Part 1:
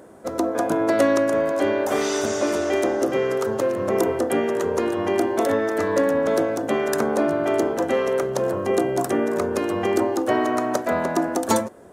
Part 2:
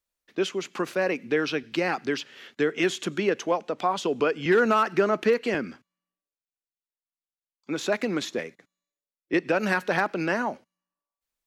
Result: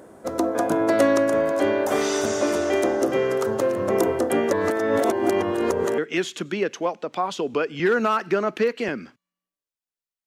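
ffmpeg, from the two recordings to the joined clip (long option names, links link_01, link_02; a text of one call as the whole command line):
ffmpeg -i cue0.wav -i cue1.wav -filter_complex "[0:a]apad=whole_dur=10.26,atrim=end=10.26,asplit=2[link_01][link_02];[link_01]atrim=end=4.512[link_03];[link_02]atrim=start=4.508:end=5.982,asetpts=PTS-STARTPTS,areverse[link_04];[1:a]atrim=start=2.638:end=6.92[link_05];[link_03][link_04]acrossfade=duration=0.004:curve1=hsin:curve2=hsin[link_06];[link_06][link_05]acrossfade=duration=0.004:curve1=hsin:curve2=hsin" out.wav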